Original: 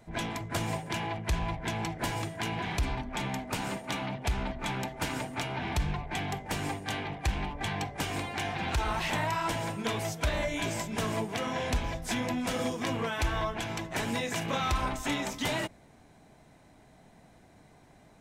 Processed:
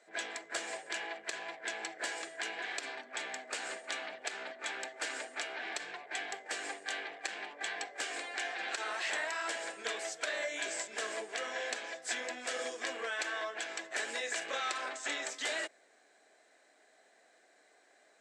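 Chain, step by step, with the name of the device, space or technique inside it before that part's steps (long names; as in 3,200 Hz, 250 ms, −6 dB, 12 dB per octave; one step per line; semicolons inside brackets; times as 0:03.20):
phone speaker on a table (loudspeaker in its box 410–8,600 Hz, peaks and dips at 940 Hz −10 dB, 1,700 Hz +8 dB, 4,400 Hz +4 dB, 7,700 Hz +9 dB)
0:14.78–0:15.26: low-pass filter 8,800 Hz 24 dB per octave
level −4.5 dB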